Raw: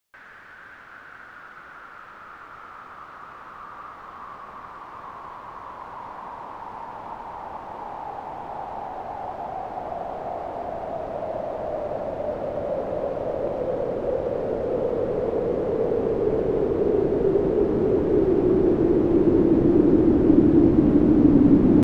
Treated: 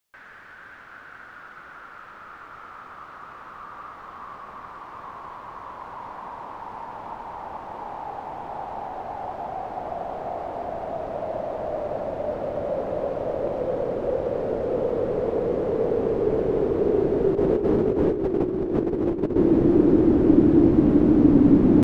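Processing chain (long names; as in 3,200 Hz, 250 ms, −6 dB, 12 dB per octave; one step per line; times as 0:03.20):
0:17.35–0:19.36: compressor whose output falls as the input rises −22 dBFS, ratio −0.5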